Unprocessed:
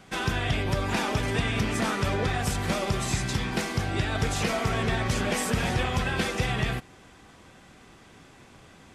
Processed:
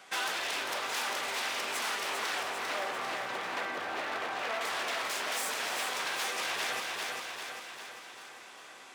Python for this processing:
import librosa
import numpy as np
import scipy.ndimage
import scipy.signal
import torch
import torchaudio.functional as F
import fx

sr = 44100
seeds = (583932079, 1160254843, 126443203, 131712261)

y = fx.lowpass(x, sr, hz=1800.0, slope=12, at=(2.42, 4.61))
y = 10.0 ** (-27.0 / 20.0) * (np.abs((y / 10.0 ** (-27.0 / 20.0) + 3.0) % 4.0 - 2.0) - 1.0)
y = fx.echo_feedback(y, sr, ms=397, feedback_pct=56, wet_db=-6)
y = fx.rider(y, sr, range_db=3, speed_s=0.5)
y = scipy.signal.sosfilt(scipy.signal.butter(2, 650.0, 'highpass', fs=sr, output='sos'), y)